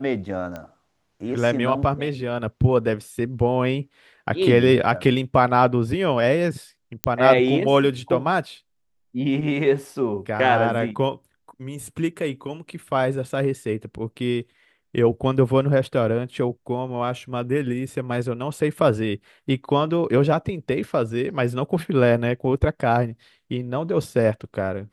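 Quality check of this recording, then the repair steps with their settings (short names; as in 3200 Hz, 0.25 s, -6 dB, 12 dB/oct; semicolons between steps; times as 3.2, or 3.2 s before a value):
0.56 pop -20 dBFS
7.04 pop -4 dBFS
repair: de-click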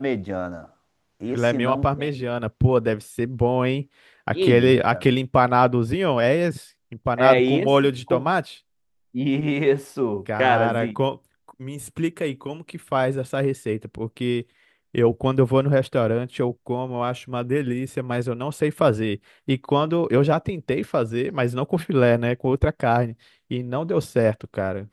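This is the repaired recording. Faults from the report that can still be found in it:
none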